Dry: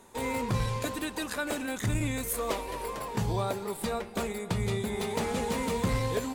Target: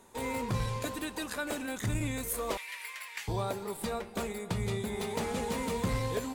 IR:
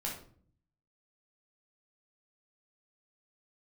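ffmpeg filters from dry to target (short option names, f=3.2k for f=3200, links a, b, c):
-filter_complex "[0:a]asettb=1/sr,asplit=3[a][b][c];[a]atrim=end=2.574[d];[b]atrim=start=2.57:end=3.28,asetpts=PTS-STARTPTS,afade=t=in:d=0.004:c=qsin,afade=t=out:st=0.706:d=0.004:c=qsin,highpass=f=2.1k:t=q:w=3.6[e];[c]atrim=start=3.276[f];[d][e]acrossfade=d=0.004:c1=hsin:c2=qsin[g];[g][f]acrossfade=d=0.004:c1=qsin:c2=hsin,asplit=2[h][i];[i]aderivative[j];[1:a]atrim=start_sample=2205[k];[j][k]afir=irnorm=-1:irlink=0,volume=-16dB[l];[h][l]amix=inputs=2:normalize=0,volume=-3dB"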